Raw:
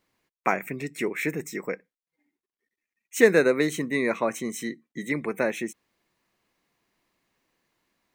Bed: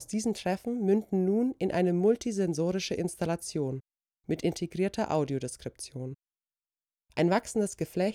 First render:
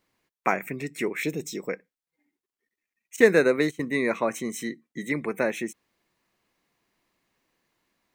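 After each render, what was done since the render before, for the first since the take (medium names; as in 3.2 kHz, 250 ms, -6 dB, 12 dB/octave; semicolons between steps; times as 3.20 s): 1.23–1.69 s: FFT filter 610 Hz 0 dB, 880 Hz -6 dB, 1.9 kHz -13 dB, 3.4 kHz +11 dB, 9.5 kHz -1 dB; 3.16–3.86 s: gate -30 dBFS, range -19 dB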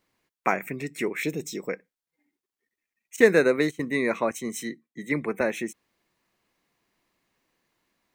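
4.31–5.41 s: three bands expanded up and down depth 70%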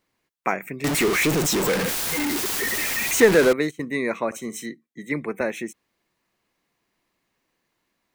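0.84–3.53 s: jump at every zero crossing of -17.5 dBFS; 4.26–4.66 s: flutter echo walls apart 10.2 m, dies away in 0.22 s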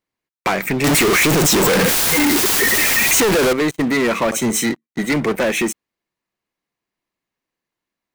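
compression 3:1, threshold -26 dBFS, peak gain reduction 12.5 dB; waveshaping leveller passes 5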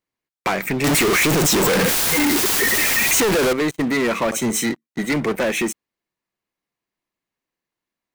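trim -2.5 dB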